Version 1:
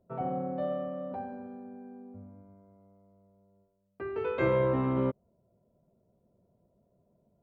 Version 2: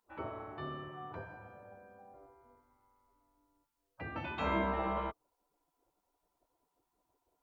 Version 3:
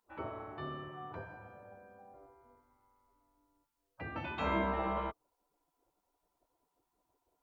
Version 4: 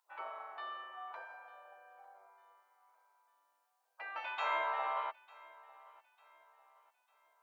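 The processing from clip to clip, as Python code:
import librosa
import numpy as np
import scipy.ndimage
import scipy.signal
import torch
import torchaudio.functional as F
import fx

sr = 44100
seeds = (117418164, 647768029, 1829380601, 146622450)

y1 = fx.spec_gate(x, sr, threshold_db=-15, keep='weak')
y1 = fx.dynamic_eq(y1, sr, hz=1800.0, q=0.72, threshold_db=-50.0, ratio=4.0, max_db=-4)
y1 = y1 * 10.0 ** (6.0 / 20.0)
y2 = y1
y3 = fx.octave_divider(y2, sr, octaves=1, level_db=-1.0)
y3 = scipy.signal.sosfilt(scipy.signal.butter(4, 710.0, 'highpass', fs=sr, output='sos'), y3)
y3 = fx.echo_feedback(y3, sr, ms=899, feedback_pct=40, wet_db=-22)
y3 = y3 * 10.0 ** (1.5 / 20.0)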